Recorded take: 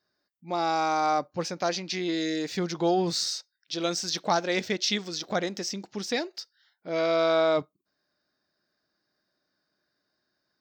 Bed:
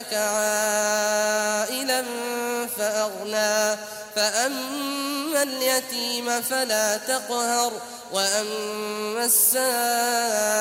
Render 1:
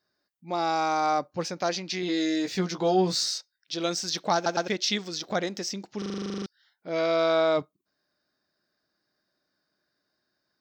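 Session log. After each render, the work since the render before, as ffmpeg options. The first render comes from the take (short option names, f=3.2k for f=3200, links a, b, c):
-filter_complex "[0:a]asettb=1/sr,asplit=3[a][b][c];[a]atrim=end=2.014[d];[b]atrim=start=2.01:end=3.38,asetpts=PTS-STARTPTS,afade=t=in:d=0.004:c=qsin,afade=t=out:st=1.366:d=0.004:c=qsin,asplit=2[e][f];[f]adelay=16,volume=-5dB[g];[e][g]amix=inputs=2:normalize=0,atrim=end_sample=60417[h];[c]atrim=start=3.376[i];[d][h]acrossfade=d=0.004:c1=hsin:c2=qsin[j];[j][i]acrossfade=d=0.004:c1=qsin:c2=hsin,asplit=16[k][l][m][n][o][p][q][r][s][t][u][v][w][x][y][z];[k]atrim=end=4.462[aa];[l]atrim=start=4.348:end=4.462[ab];[m]atrim=start=4.348:end=4.462[ac];[n]atrim=start=4.678:end=6.022[ad];[o]atrim=start=5.978:end=6.022[ae];[p]atrim=start=5.978:end=6.022[af];[q]atrim=start=5.978:end=6.022[ag];[r]atrim=start=5.978:end=6.022[ah];[s]atrim=start=5.978:end=6.022[ai];[t]atrim=start=5.978:end=6.022[aj];[u]atrim=start=5.978:end=6.022[ak];[v]atrim=start=5.978:end=6.022[al];[w]atrim=start=5.978:end=6.022[am];[x]atrim=start=5.978:end=6.022[an];[y]atrim=start=5.978:end=6.022[ao];[z]atrim=start=6.458[ap];[aa][ab]acrossfade=d=0.004:c1=hsin:c2=hsin[aq];[aq][ac]acrossfade=d=0.004:c1=hsin:c2=hsin[ar];[ar][ad]acrossfade=d=0.004:c1=hsin:c2=hsin[as];[as][ae]acrossfade=d=0.004:c1=hsin:c2=hsin[at];[at][af]acrossfade=d=0.004:c1=hsin:c2=hsin[au];[au][ag]acrossfade=d=0.004:c1=hsin:c2=hsin[av];[av][ah]acrossfade=d=0.004:c1=hsin:c2=hsin[aw];[aw][ai]acrossfade=d=0.004:c1=hsin:c2=hsin[ax];[ax][aj]acrossfade=d=0.004:c1=hsin:c2=hsin[ay];[ay][ak]acrossfade=d=0.004:c1=hsin:c2=hsin[az];[az][al]acrossfade=d=0.004:c1=hsin:c2=hsin[ba];[ba][am]acrossfade=d=0.004:c1=hsin:c2=hsin[bb];[bb][an]acrossfade=d=0.004:c1=hsin:c2=hsin[bc];[bc][ao]acrossfade=d=0.004:c1=hsin:c2=hsin[bd];[bd][ap]acrossfade=d=0.004:c1=hsin:c2=hsin"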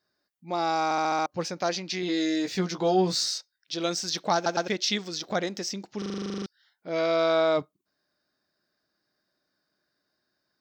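-filter_complex "[0:a]asplit=7[a][b][c][d][e][f][g];[a]atrim=end=0.912[h];[b]atrim=start=0.838:end=0.912[i];[c]atrim=start=0.838:end=0.912[j];[d]atrim=start=0.838:end=0.912[k];[e]atrim=start=0.838:end=0.912[l];[f]atrim=start=0.838:end=0.912[m];[g]atrim=start=1.258[n];[h][i]acrossfade=d=0.004:c1=hsin:c2=hsin[o];[o][j]acrossfade=d=0.004:c1=hsin:c2=hsin[p];[p][k]acrossfade=d=0.004:c1=hsin:c2=hsin[q];[q][l]acrossfade=d=0.004:c1=hsin:c2=hsin[r];[r][m]acrossfade=d=0.004:c1=hsin:c2=hsin[s];[s][n]acrossfade=d=0.004:c1=hsin:c2=hsin"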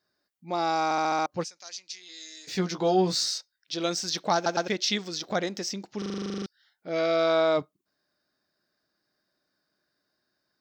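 -filter_complex "[0:a]asplit=3[a][b][c];[a]afade=t=out:st=1.43:d=0.02[d];[b]bandpass=f=7.7k:t=q:w=1.4,afade=t=in:st=1.43:d=0.02,afade=t=out:st=2.47:d=0.02[e];[c]afade=t=in:st=2.47:d=0.02[f];[d][e][f]amix=inputs=3:normalize=0,asettb=1/sr,asplit=3[g][h][i];[g]atrim=end=6.294[j];[h]atrim=start=6.29:end=7.27,asetpts=PTS-STARTPTS,afade=t=in:d=0.004:c=qsin,afade=t=out:st=0.976:d=0.004:c=qsin,bandreject=f=1k:w=9.4[k];[i]atrim=start=7.266[l];[j][k]acrossfade=d=0.004:c1=hsin:c2=qsin[m];[m][l]acrossfade=d=0.004:c1=qsin:c2=hsin"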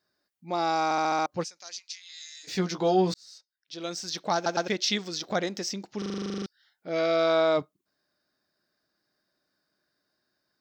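-filter_complex "[0:a]asplit=3[a][b][c];[a]afade=t=out:st=1.78:d=0.02[d];[b]highpass=f=1k:w=0.5412,highpass=f=1k:w=1.3066,afade=t=in:st=1.78:d=0.02,afade=t=out:st=2.43:d=0.02[e];[c]afade=t=in:st=2.43:d=0.02[f];[d][e][f]amix=inputs=3:normalize=0,asplit=2[g][h];[g]atrim=end=3.14,asetpts=PTS-STARTPTS,afade=t=out:st=3.136:d=0.004:c=hsin[i];[h]atrim=start=3.14,asetpts=PTS-STARTPTS,afade=t=in:d=1.52[j];[i][j]concat=n=2:v=0:a=1"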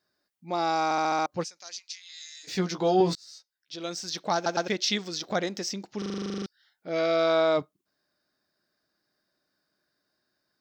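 -filter_complex "[0:a]asettb=1/sr,asplit=3[a][b][c];[a]atrim=end=2.994[d];[b]atrim=start=2.99:end=3.76,asetpts=PTS-STARTPTS,afade=t=in:d=0.004:c=qsin,afade=t=out:st=0.766:d=0.004:c=qsin,asplit=2[e][f];[f]adelay=13,volume=-3dB[g];[e][g]amix=inputs=2:normalize=0,atrim=end_sample=33957[h];[c]atrim=start=3.756[i];[d][h]acrossfade=d=0.004:c1=hsin:c2=qsin[j];[j][i]acrossfade=d=0.004:c1=qsin:c2=hsin"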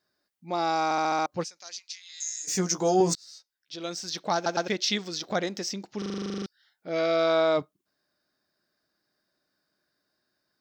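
-filter_complex "[0:a]asettb=1/sr,asplit=3[a][b][c];[a]atrim=end=2.204[d];[b]atrim=start=2.2:end=3.14,asetpts=PTS-STARTPTS,afade=t=in:d=0.004:c=qsin,afade=t=out:st=0.936:d=0.004:c=qsin,highshelf=f=5.1k:t=q:w=3:g=10[e];[c]atrim=start=3.136[f];[d][e]acrossfade=d=0.004:c1=hsin:c2=qsin[g];[g][f]acrossfade=d=0.004:c1=qsin:c2=hsin"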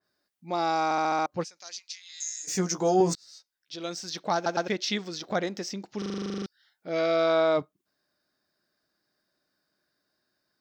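-af "adynamicequalizer=threshold=0.00631:dfrequency=2800:dqfactor=0.7:tfrequency=2800:tqfactor=0.7:attack=5:release=100:ratio=0.375:range=2.5:mode=cutabove:tftype=highshelf"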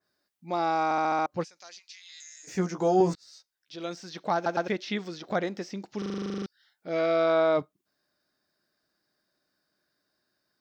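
-filter_complex "[0:a]acrossover=split=3000[a][b];[b]acompressor=threshold=-47dB:ratio=4:attack=1:release=60[c];[a][c]amix=inputs=2:normalize=0"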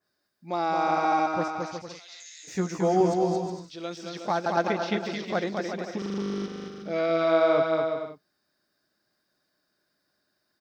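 -af "aecho=1:1:220|363|456|516.4|555.6:0.631|0.398|0.251|0.158|0.1"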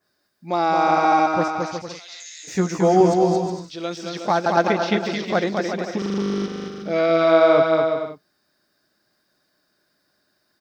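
-af "volume=7dB"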